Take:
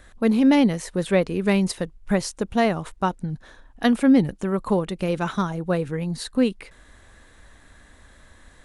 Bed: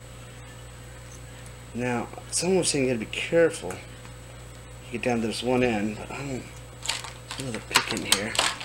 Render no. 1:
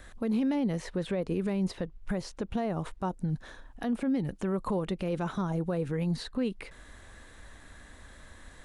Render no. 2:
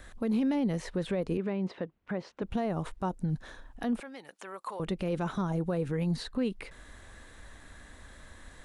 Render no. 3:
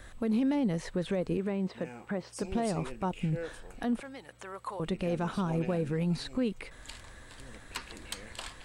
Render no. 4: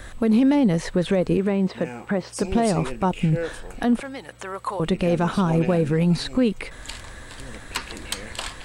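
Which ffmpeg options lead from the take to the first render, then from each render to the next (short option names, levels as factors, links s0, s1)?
-filter_complex "[0:a]acrossover=split=1000|4900[s0][s1][s2];[s0]acompressor=threshold=0.112:ratio=4[s3];[s1]acompressor=threshold=0.01:ratio=4[s4];[s2]acompressor=threshold=0.00141:ratio=4[s5];[s3][s4][s5]amix=inputs=3:normalize=0,alimiter=limit=0.0794:level=0:latency=1:release=137"
-filter_complex "[0:a]asettb=1/sr,asplit=3[s0][s1][s2];[s0]atrim=end=1.374[s3];[s1]atrim=start=1.37:end=2.42,asetpts=PTS-STARTPTS,afade=t=in:d=0.004:c=qsin,afade=t=out:st=1.046:d=0.004:c=qsin,highpass=200,lowpass=2900[s4];[s2]atrim=start=2.416[s5];[s3][s4]acrossfade=d=0.004:c1=hsin:c2=qsin[s6];[s6][s5]acrossfade=d=0.004:c1=qsin:c2=hsin,asettb=1/sr,asplit=3[s7][s8][s9];[s7]atrim=end=4.004[s10];[s8]atrim=start=4:end=4.8,asetpts=PTS-STARTPTS,afade=t=in:d=0.004:c=qsin,afade=t=out:st=0.796:d=0.004:c=qsin,highpass=860[s11];[s9]atrim=start=4.796[s12];[s10][s11]acrossfade=d=0.004:c1=hsin:c2=qsin[s13];[s13][s12]acrossfade=d=0.004:c1=qsin:c2=hsin"
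-filter_complex "[1:a]volume=0.112[s0];[0:a][s0]amix=inputs=2:normalize=0"
-af "volume=3.35"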